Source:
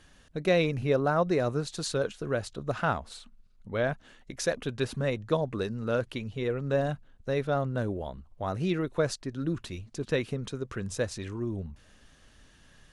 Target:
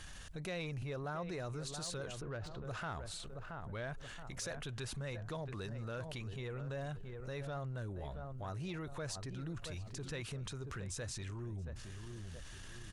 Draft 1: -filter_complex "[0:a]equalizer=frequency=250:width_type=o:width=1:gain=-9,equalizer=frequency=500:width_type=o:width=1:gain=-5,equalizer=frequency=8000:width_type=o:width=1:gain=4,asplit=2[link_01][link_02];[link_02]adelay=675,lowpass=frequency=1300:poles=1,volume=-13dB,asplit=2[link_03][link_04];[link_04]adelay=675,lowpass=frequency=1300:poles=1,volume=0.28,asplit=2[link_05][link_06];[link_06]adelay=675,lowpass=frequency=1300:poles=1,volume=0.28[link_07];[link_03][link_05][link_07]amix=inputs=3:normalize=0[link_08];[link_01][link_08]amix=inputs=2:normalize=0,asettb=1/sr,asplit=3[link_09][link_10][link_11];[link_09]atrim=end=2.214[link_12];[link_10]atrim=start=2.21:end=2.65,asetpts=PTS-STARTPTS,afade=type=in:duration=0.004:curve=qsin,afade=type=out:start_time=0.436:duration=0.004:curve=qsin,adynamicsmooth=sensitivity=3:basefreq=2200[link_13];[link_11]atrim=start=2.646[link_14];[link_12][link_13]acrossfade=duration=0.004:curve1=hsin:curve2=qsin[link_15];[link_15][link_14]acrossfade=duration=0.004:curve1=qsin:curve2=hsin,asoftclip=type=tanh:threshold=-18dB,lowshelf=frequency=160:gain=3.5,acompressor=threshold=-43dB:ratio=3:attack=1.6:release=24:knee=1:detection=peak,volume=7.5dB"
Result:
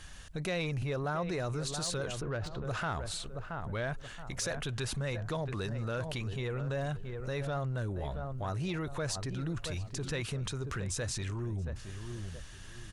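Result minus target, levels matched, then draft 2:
downward compressor: peak gain reduction −7.5 dB
-filter_complex "[0:a]equalizer=frequency=250:width_type=o:width=1:gain=-9,equalizer=frequency=500:width_type=o:width=1:gain=-5,equalizer=frequency=8000:width_type=o:width=1:gain=4,asplit=2[link_01][link_02];[link_02]adelay=675,lowpass=frequency=1300:poles=1,volume=-13dB,asplit=2[link_03][link_04];[link_04]adelay=675,lowpass=frequency=1300:poles=1,volume=0.28,asplit=2[link_05][link_06];[link_06]adelay=675,lowpass=frequency=1300:poles=1,volume=0.28[link_07];[link_03][link_05][link_07]amix=inputs=3:normalize=0[link_08];[link_01][link_08]amix=inputs=2:normalize=0,asettb=1/sr,asplit=3[link_09][link_10][link_11];[link_09]atrim=end=2.214[link_12];[link_10]atrim=start=2.21:end=2.65,asetpts=PTS-STARTPTS,afade=type=in:duration=0.004:curve=qsin,afade=type=out:start_time=0.436:duration=0.004:curve=qsin,adynamicsmooth=sensitivity=3:basefreq=2200[link_13];[link_11]atrim=start=2.646[link_14];[link_12][link_13]acrossfade=duration=0.004:curve1=hsin:curve2=qsin[link_15];[link_15][link_14]acrossfade=duration=0.004:curve1=qsin:curve2=hsin,asoftclip=type=tanh:threshold=-18dB,lowshelf=frequency=160:gain=3.5,acompressor=threshold=-54dB:ratio=3:attack=1.6:release=24:knee=1:detection=peak,volume=7.5dB"

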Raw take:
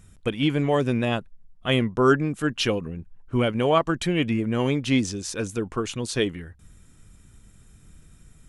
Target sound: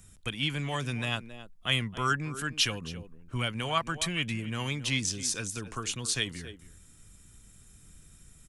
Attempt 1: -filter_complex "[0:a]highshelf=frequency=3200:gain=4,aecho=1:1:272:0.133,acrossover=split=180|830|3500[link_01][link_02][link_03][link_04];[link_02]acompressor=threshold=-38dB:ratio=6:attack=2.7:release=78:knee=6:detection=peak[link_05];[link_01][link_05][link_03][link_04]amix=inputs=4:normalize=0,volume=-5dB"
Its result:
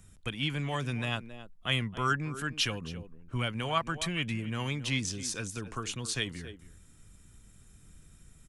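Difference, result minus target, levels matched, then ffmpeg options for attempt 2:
8,000 Hz band −3.0 dB
-filter_complex "[0:a]highshelf=frequency=3200:gain=10,aecho=1:1:272:0.133,acrossover=split=180|830|3500[link_01][link_02][link_03][link_04];[link_02]acompressor=threshold=-38dB:ratio=6:attack=2.7:release=78:knee=6:detection=peak[link_05];[link_01][link_05][link_03][link_04]amix=inputs=4:normalize=0,volume=-5dB"

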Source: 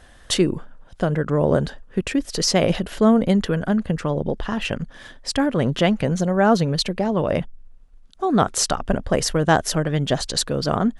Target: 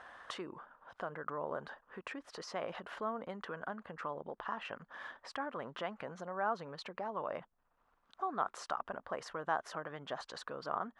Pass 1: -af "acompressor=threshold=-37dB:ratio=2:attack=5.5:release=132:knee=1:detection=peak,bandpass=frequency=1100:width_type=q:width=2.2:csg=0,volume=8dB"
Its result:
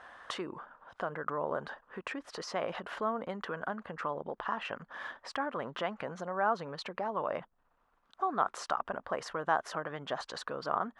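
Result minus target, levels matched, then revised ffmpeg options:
downward compressor: peak gain reduction −5.5 dB
-af "acompressor=threshold=-47.5dB:ratio=2:attack=5.5:release=132:knee=1:detection=peak,bandpass=frequency=1100:width_type=q:width=2.2:csg=0,volume=8dB"

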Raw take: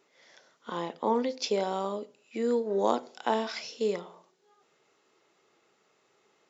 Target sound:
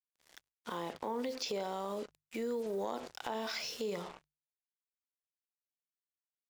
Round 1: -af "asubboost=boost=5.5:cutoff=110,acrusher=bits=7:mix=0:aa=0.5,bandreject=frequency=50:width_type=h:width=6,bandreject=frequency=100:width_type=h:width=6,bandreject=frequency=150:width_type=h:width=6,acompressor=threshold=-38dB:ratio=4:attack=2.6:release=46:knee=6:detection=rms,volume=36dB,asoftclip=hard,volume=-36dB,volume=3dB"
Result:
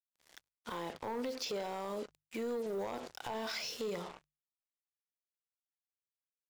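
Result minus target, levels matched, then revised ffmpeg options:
gain into a clipping stage and back: distortion +26 dB
-af "asubboost=boost=5.5:cutoff=110,acrusher=bits=7:mix=0:aa=0.5,bandreject=frequency=50:width_type=h:width=6,bandreject=frequency=100:width_type=h:width=6,bandreject=frequency=150:width_type=h:width=6,acompressor=threshold=-38dB:ratio=4:attack=2.6:release=46:knee=6:detection=rms,volume=28.5dB,asoftclip=hard,volume=-28.5dB,volume=3dB"

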